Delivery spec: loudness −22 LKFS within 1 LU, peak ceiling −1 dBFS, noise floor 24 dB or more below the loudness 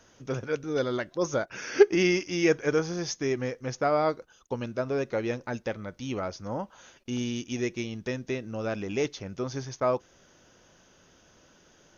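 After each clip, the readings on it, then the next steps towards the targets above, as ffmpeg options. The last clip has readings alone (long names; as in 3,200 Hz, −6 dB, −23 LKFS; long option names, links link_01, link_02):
integrated loudness −29.5 LKFS; sample peak −6.0 dBFS; target loudness −22.0 LKFS
→ -af "volume=7.5dB,alimiter=limit=-1dB:level=0:latency=1"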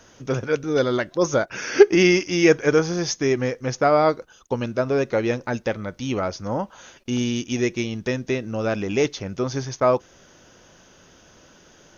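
integrated loudness −22.0 LKFS; sample peak −1.0 dBFS; background noise floor −53 dBFS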